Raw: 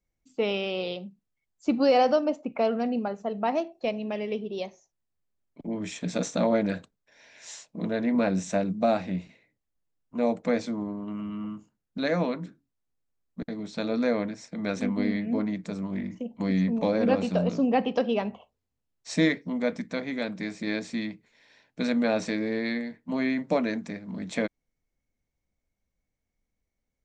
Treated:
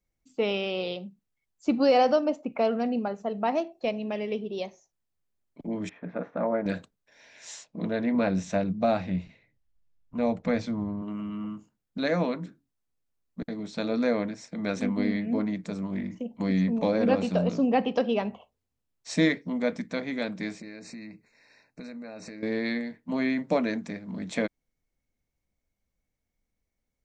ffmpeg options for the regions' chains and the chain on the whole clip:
-filter_complex "[0:a]asettb=1/sr,asplit=3[a][b][c];[a]atrim=end=5.894[d];[b]atrim=start=5.89:end=6.66,asetpts=PTS-STARTPTS,afade=t=in:d=0.004:c=qsin,afade=t=out:st=0.766:d=0.004:c=qsin,lowpass=f=1.7k:w=0.5412,lowpass=f=1.7k:w=1.3066,lowshelf=f=360:g=-9.5[e];[c]atrim=start=6.656[f];[d][e]acrossfade=d=0.004:c1=hsin:c2=qsin[g];[g][f]acrossfade=d=0.004:c1=qsin:c2=hsin,asettb=1/sr,asplit=3[h][i][j];[h]atrim=end=7.644[k];[i]atrim=start=7.64:end=11.02,asetpts=PTS-STARTPTS,afade=t=in:d=0.004:c=qsin,afade=t=out:st=3.376:d=0.004:c=qsin,lowpass=5.5k,asubboost=boost=6:cutoff=140[l];[j]atrim=start=11.016[m];[k][l]acrossfade=d=0.004:c1=hsin:c2=qsin[n];[n][m]acrossfade=d=0.004:c1=qsin:c2=hsin,asettb=1/sr,asplit=3[o][p][q];[o]atrim=end=20.604[r];[p]atrim=start=20.6:end=22.43,asetpts=PTS-STARTPTS,afade=t=in:d=0.004:c=qsin,afade=t=out:st=1.826:d=0.004:c=qsin,asuperstop=centerf=3200:order=20:qfactor=3.1,acompressor=threshold=-39dB:ratio=6:attack=3.2:release=140:knee=1:detection=peak[s];[q]atrim=start=22.426[t];[r][s]acrossfade=d=0.004:c1=hsin:c2=qsin[u];[u][t]acrossfade=d=0.004:c1=qsin:c2=hsin"

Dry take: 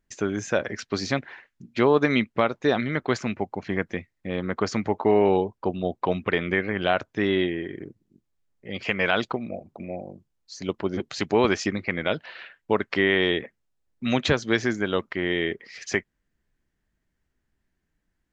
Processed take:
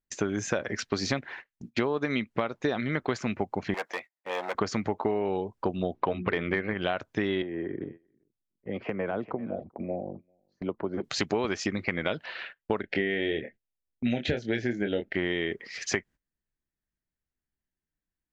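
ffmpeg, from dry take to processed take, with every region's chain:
-filter_complex "[0:a]asettb=1/sr,asplit=3[a][b][c];[a]atrim=end=3.744[d];[b]atrim=start=3.74:end=4.55,asetpts=PTS-STARTPTS,afade=t=in:d=0.004:c=qsin,afade=t=out:st=0.806:d=0.004:c=qsin,bandreject=f=1.1k:w=25,volume=26.5dB,asoftclip=hard,volume=-26.5dB,highpass=f=710:t=q:w=2.2[e];[c]atrim=start=4.546[f];[d][e]acrossfade=d=0.004:c1=hsin:c2=qsin[g];[g][f]acrossfade=d=0.004:c1=qsin:c2=hsin,asettb=1/sr,asplit=3[h][i][j];[h]atrim=end=5.944[k];[i]atrim=start=5.94:end=6.74,asetpts=PTS-STARTPTS,afade=t=in:d=0.004:c=qsin,afade=t=out:st=0.796:d=0.004:c=qsin,lowpass=3.2k,acontrast=28,bandreject=f=60:t=h:w=6,bandreject=f=120:t=h:w=6,bandreject=f=180:t=h:w=6,bandreject=f=240:t=h:w=6,bandreject=f=300:t=h:w=6,bandreject=f=360:t=h:w=6,bandreject=f=420:t=h:w=6[l];[j]atrim=start=6.736[m];[k][l]acrossfade=d=0.004:c1=hsin:c2=qsin[n];[n][m]acrossfade=d=0.004:c1=qsin:c2=hsin,asettb=1/sr,asplit=3[o][p][q];[o]atrim=end=7.424[r];[p]atrim=start=7.42:end=11.04,asetpts=PTS-STARTPTS,afade=t=in:d=0.004:c=qsin,afade=t=out:st=3.616:d=0.004:c=qsin,lowpass=1.2k,acrossover=split=210|650[s][t][u];[s]acompressor=threshold=-45dB:ratio=4[v];[t]acompressor=threshold=-33dB:ratio=4[w];[u]acompressor=threshold=-42dB:ratio=4[x];[v][w][x]amix=inputs=3:normalize=0,aecho=1:1:393:0.126,atrim=end_sample=159642[y];[q]atrim=start=11.036[z];[r][y]acrossfade=d=0.004:c1=hsin:c2=qsin[aa];[aa][z]acrossfade=d=0.004:c1=qsin:c2=hsin,asettb=1/sr,asplit=3[ab][ac][ad];[ab]atrim=end=12.814[ae];[ac]atrim=start=12.81:end=15.15,asetpts=PTS-STARTPTS,afade=t=in:d=0.004:c=qsin,afade=t=out:st=2.336:d=0.004:c=qsin,asuperstop=centerf=1100:order=4:qfactor=1.2,bass=f=250:g=-1,treble=f=4k:g=-15,asplit=2[af][ag];[ag]adelay=25,volume=-6.5dB[ah];[af][ah]amix=inputs=2:normalize=0,atrim=end_sample=103194[ai];[ad]atrim=start=15.146[aj];[ae][ai]acrossfade=d=0.004:c1=hsin:c2=qsin[ak];[ak][aj]acrossfade=d=0.004:c1=qsin:c2=hsin,agate=range=-18dB:threshold=-45dB:ratio=16:detection=peak,acompressor=threshold=-27dB:ratio=10,volume=3dB"

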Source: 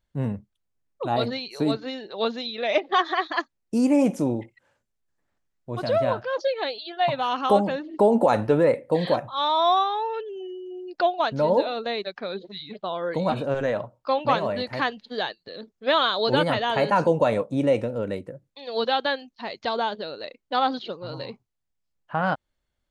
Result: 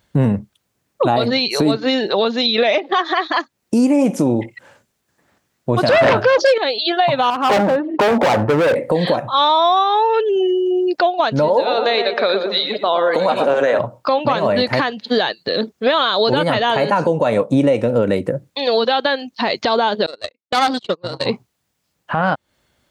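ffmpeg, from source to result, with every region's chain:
-filter_complex "[0:a]asettb=1/sr,asplit=3[a][b][c];[a]atrim=end=5.884[d];[b]atrim=start=5.88:end=6.58,asetpts=PTS-STARTPTS,afade=t=in:d=0.004:c=qsin,afade=t=out:st=0.696:d=0.004:c=qsin,bandreject=f=60:t=h:w=6,bandreject=f=120:t=h:w=6,bandreject=f=180:t=h:w=6,bandreject=f=240:t=h:w=6,bandreject=f=300:t=h:w=6,bandreject=f=360:t=h:w=6,bandreject=f=420:t=h:w=6,aeval=exprs='0.282*sin(PI/2*3.16*val(0)/0.282)':c=same[e];[c]atrim=start=6.576[f];[d][e]acrossfade=d=0.004:c1=hsin:c2=qsin[g];[g][f]acrossfade=d=0.004:c1=qsin:c2=hsin,asettb=1/sr,asplit=3[h][i][j];[h]atrim=end=7.304[k];[i]atrim=start=7.3:end=8.76,asetpts=PTS-STARTPTS,afade=t=in:d=0.004:c=qsin,afade=t=out:st=1.456:d=0.004:c=qsin,lowpass=1.1k,equalizer=f=210:w=0.51:g=-7,volume=28.5dB,asoftclip=hard,volume=-28.5dB[l];[j]atrim=start=8.756[m];[k][l]acrossfade=d=0.004:c1=hsin:c2=qsin[n];[n][m]acrossfade=d=0.004:c1=qsin:c2=hsin,asettb=1/sr,asplit=3[o][p][q];[o]atrim=end=11.484[r];[p]atrim=start=11.48:end=13.79,asetpts=PTS-STARTPTS,afade=t=in:d=0.004:c=qsin,afade=t=out:st=2.306:d=0.004:c=qsin,highpass=400,asplit=2[s][t];[t]adelay=117,lowpass=f=1.7k:p=1,volume=-7.5dB,asplit=2[u][v];[v]adelay=117,lowpass=f=1.7k:p=1,volume=0.45,asplit=2[w][x];[x]adelay=117,lowpass=f=1.7k:p=1,volume=0.45,asplit=2[y][z];[z]adelay=117,lowpass=f=1.7k:p=1,volume=0.45,asplit=2[aa][ab];[ab]adelay=117,lowpass=f=1.7k:p=1,volume=0.45[ac];[s][u][w][y][aa][ac]amix=inputs=6:normalize=0,atrim=end_sample=101871[ad];[q]atrim=start=13.786[ae];[r][ad]acrossfade=d=0.004:c1=hsin:c2=qsin[af];[af][ae]acrossfade=d=0.004:c1=qsin:c2=hsin,asettb=1/sr,asplit=3[ag][ah][ai];[ag]atrim=end=20.064[aj];[ah]atrim=start=20.06:end=21.26,asetpts=PTS-STARTPTS,afade=t=in:d=0.004:c=qsin,afade=t=out:st=1.196:d=0.004:c=qsin,equalizer=f=4k:w=0.31:g=3,aeval=exprs='(tanh(10*val(0)+0.8)-tanh(0.8))/10':c=same,agate=range=-30dB:threshold=-38dB:ratio=16:release=100:detection=peak[ak];[ai]atrim=start=21.256[al];[aj][ak]acrossfade=d=0.004:c1=hsin:c2=qsin[am];[am][al]acrossfade=d=0.004:c1=qsin:c2=hsin,highpass=98,acompressor=threshold=-32dB:ratio=6,alimiter=level_in=25dB:limit=-1dB:release=50:level=0:latency=1,volume=-5dB"

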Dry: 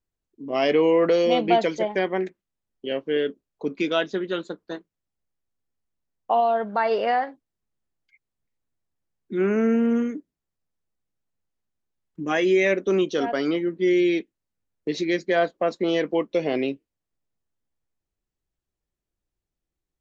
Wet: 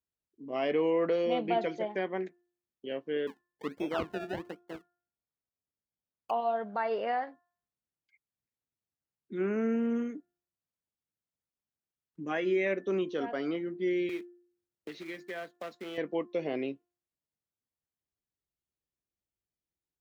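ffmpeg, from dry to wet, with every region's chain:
-filter_complex "[0:a]asettb=1/sr,asplit=3[a][b][c];[a]atrim=end=3.274[d];[b]atrim=start=3.27:end=6.31,asetpts=PTS-STARTPTS,afade=t=in:d=0.004:c=qsin,afade=t=out:st=3.036:d=0.004:c=qsin,lowpass=f=4.4k:w=0.5412,lowpass=f=4.4k:w=1.3066,acrusher=samples=29:mix=1:aa=0.000001:lfo=1:lforange=29:lforate=1.3[e];[c]atrim=start=6.306[f];[d][e]acrossfade=d=0.004:c1=hsin:c2=qsin[g];[g][f]acrossfade=d=0.004:c1=qsin:c2=hsin,asettb=1/sr,asplit=3[h][i][j];[h]atrim=end=14.094[k];[i]atrim=start=14.09:end=15.98,asetpts=PTS-STARTPTS,afade=t=in:d=0.004:c=qsin,afade=t=out:st=1.886:d=0.004:c=qsin,acrusher=bits=3:mode=log:mix=0:aa=0.000001,acrossover=split=170|1200[l][m][n];[l]acompressor=threshold=-54dB:ratio=4[o];[m]acompressor=threshold=-33dB:ratio=4[p];[n]acompressor=threshold=-31dB:ratio=4[q];[o][p][q]amix=inputs=3:normalize=0[r];[j]atrim=start=15.976[s];[k][r]acrossfade=d=0.004:c1=hsin:c2=qsin[t];[t][s]acrossfade=d=0.004:c1=qsin:c2=hsin,highpass=65,bandreject=f=351.7:t=h:w=4,bandreject=f=703.4:t=h:w=4,bandreject=f=1.0551k:t=h:w=4,bandreject=f=1.4068k:t=h:w=4,bandreject=f=1.7585k:t=h:w=4,acrossover=split=3400[u][v];[v]acompressor=threshold=-53dB:ratio=4:attack=1:release=60[w];[u][w]amix=inputs=2:normalize=0,volume=-9dB"

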